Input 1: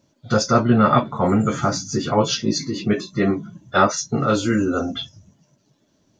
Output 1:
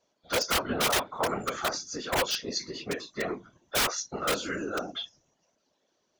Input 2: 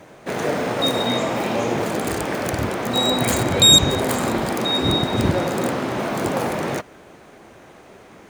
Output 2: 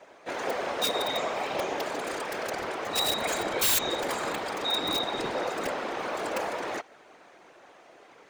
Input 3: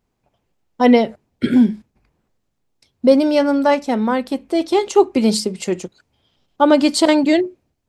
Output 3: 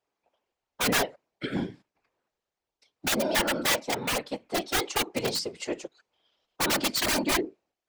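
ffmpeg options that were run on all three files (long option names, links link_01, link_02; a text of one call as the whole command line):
ffmpeg -i in.wav -filter_complex "[0:a]acrossover=split=360 7400:gain=0.0794 1 0.251[link_01][link_02][link_03];[link_01][link_02][link_03]amix=inputs=3:normalize=0,aeval=exprs='(mod(4.47*val(0)+1,2)-1)/4.47':channel_layout=same,afftfilt=real='hypot(re,im)*cos(2*PI*random(0))':imag='hypot(re,im)*sin(2*PI*random(1))':win_size=512:overlap=0.75" out.wav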